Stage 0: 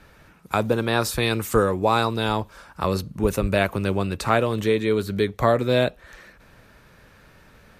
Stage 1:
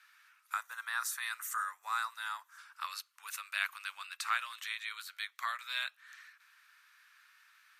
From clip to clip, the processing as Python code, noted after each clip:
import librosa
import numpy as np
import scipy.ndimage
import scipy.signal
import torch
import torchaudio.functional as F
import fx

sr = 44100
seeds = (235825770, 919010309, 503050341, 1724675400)

y = fx.spec_box(x, sr, start_s=0.53, length_s=2.05, low_hz=2100.0, high_hz=5500.0, gain_db=-9)
y = scipy.signal.sosfilt(scipy.signal.butter(6, 1200.0, 'highpass', fs=sr, output='sos'), y)
y = F.gain(torch.from_numpy(y), -7.0).numpy()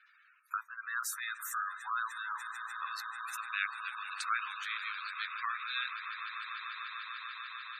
y = fx.echo_swell(x, sr, ms=148, loudest=8, wet_db=-13.0)
y = fx.spec_gate(y, sr, threshold_db=-15, keep='strong')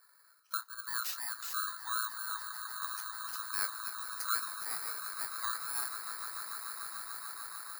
y = fx.bit_reversed(x, sr, seeds[0], block=16)
y = fx.doubler(y, sr, ms=25.0, db=-10.5)